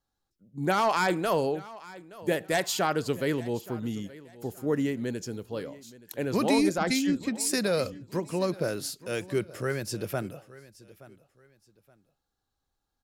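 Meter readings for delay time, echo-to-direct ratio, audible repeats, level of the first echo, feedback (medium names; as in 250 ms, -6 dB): 873 ms, -19.0 dB, 2, -19.5 dB, 29%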